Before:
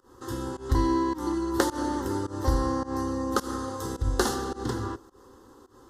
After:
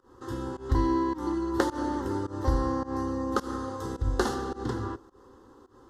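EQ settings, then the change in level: low-pass 3.1 kHz 6 dB/octave; -1.0 dB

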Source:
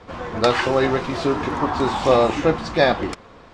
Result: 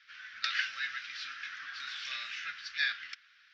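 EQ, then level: elliptic high-pass 1.5 kHz, stop band 40 dB; elliptic low-pass 5.7 kHz, stop band 60 dB; -6.5 dB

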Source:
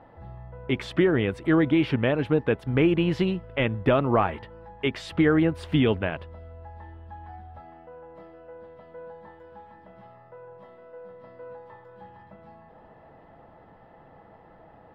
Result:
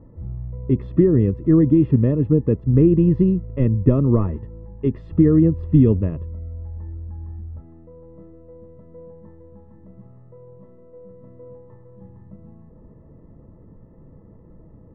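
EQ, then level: boxcar filter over 58 samples; tilt EQ -2 dB/octave; +5.5 dB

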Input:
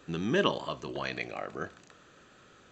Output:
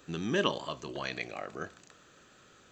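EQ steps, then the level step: treble shelf 5.7 kHz +9.5 dB; -2.5 dB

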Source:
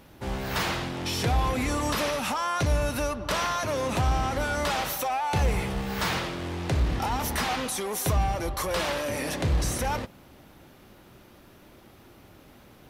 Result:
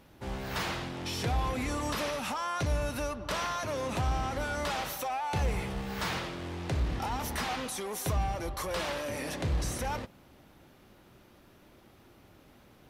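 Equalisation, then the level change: treble shelf 12 kHz -4 dB; -5.5 dB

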